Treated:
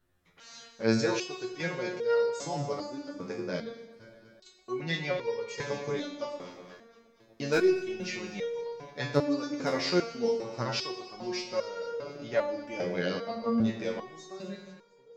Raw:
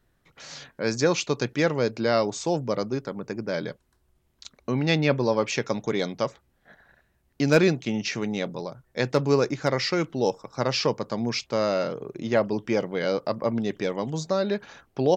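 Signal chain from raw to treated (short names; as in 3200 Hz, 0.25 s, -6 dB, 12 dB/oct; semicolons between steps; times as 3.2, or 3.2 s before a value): ending faded out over 1.34 s; on a send: echo with dull and thin repeats by turns 0.119 s, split 870 Hz, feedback 78%, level -14 dB; on the sum: Schroeder reverb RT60 1.1 s, combs from 32 ms, DRR 6 dB; stepped resonator 2.5 Hz 89–470 Hz; gain +4.5 dB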